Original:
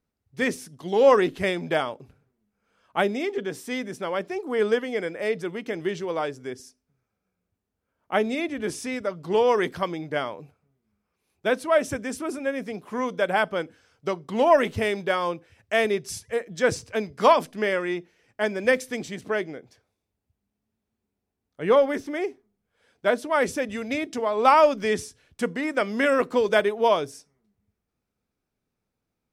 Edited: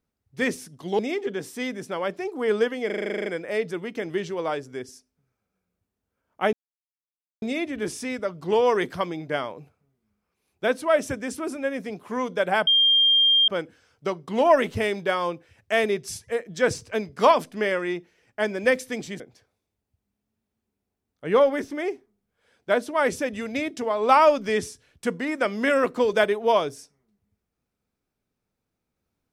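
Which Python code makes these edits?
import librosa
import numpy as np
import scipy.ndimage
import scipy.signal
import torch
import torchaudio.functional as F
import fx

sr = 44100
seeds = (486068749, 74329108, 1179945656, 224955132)

y = fx.edit(x, sr, fx.cut(start_s=0.99, length_s=2.11),
    fx.stutter(start_s=4.97, slice_s=0.04, count=11),
    fx.insert_silence(at_s=8.24, length_s=0.89),
    fx.insert_tone(at_s=13.49, length_s=0.81, hz=3200.0, db=-15.0),
    fx.cut(start_s=19.21, length_s=0.35), tone=tone)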